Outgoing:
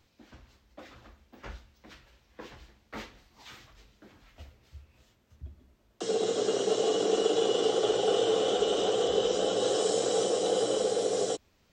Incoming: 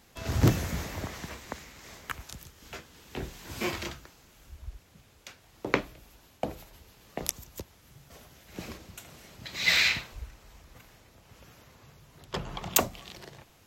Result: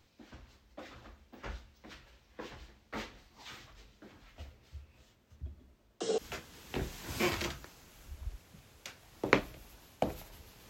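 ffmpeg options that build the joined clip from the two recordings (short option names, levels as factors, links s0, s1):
-filter_complex "[0:a]asettb=1/sr,asplit=3[s0][s1][s2];[s0]atrim=end=5.594[s3];[s1]atrim=start=5.59:end=6.18,asetpts=PTS-STARTPTS,afade=t=in:d=0.004:c=qsin,afade=t=out:st=0.586:d=0.004:c=qsin,tremolo=f=0.62:d=0.41[s4];[s2]atrim=start=6.176[s5];[s3][s4]acrossfade=d=0.004:c1=hsin:c2=qsin[s6];[s6][s5]acrossfade=d=0.004:c1=qsin:c2=hsin,apad=whole_dur=10.69,atrim=end=10.69,atrim=end=6.182[s7];[1:a]atrim=start=2.588:end=7.1[s8];[s7][s8]acrossfade=d=0.004:c1=hsin:c2=hsin"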